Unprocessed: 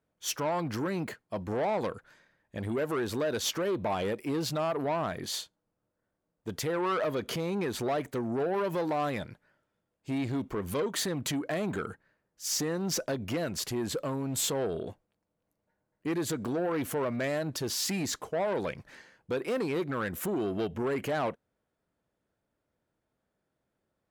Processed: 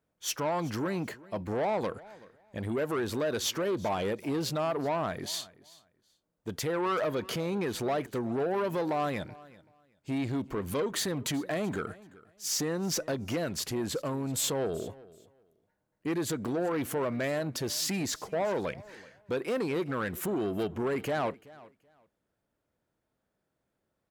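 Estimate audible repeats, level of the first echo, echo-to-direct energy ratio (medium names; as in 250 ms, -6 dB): 2, -21.0 dB, -21.0 dB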